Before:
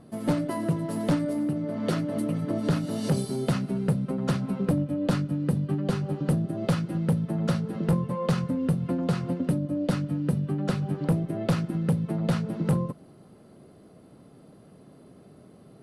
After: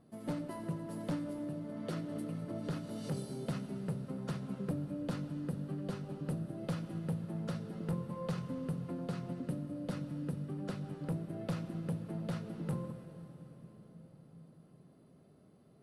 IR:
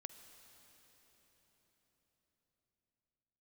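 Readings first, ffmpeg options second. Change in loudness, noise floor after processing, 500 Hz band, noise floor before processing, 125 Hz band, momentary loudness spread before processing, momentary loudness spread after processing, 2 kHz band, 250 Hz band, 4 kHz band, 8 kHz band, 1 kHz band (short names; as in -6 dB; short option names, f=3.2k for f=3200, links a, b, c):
-12.5 dB, -62 dBFS, -12.0 dB, -53 dBFS, -12.5 dB, 2 LU, 11 LU, -12.5 dB, -12.5 dB, -12.5 dB, -12.5 dB, -12.5 dB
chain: -filter_complex "[1:a]atrim=start_sample=2205[a];[0:a][a]afir=irnorm=-1:irlink=0,volume=-7.5dB"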